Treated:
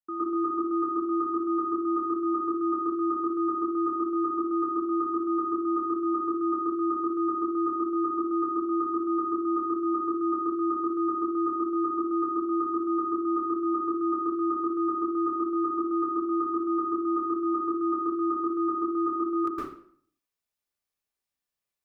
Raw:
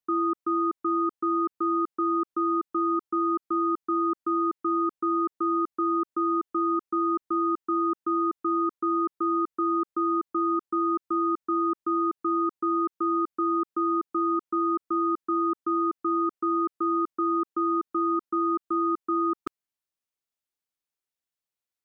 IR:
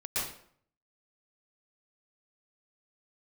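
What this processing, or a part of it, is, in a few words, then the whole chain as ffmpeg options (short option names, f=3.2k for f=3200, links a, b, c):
bathroom: -filter_complex "[1:a]atrim=start_sample=2205[a];[0:a][a]afir=irnorm=-1:irlink=0,volume=-3dB"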